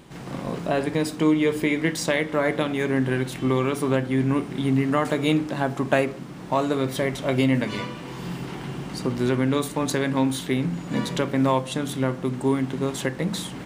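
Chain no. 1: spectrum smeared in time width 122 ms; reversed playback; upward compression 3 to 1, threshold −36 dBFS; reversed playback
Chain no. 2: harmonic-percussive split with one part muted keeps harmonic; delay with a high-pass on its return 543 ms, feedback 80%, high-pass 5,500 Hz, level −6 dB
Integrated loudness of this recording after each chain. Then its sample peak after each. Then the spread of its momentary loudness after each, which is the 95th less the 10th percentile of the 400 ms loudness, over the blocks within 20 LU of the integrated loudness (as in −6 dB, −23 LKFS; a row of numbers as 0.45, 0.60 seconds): −26.0, −26.0 LKFS; −10.5, −10.0 dBFS; 10, 11 LU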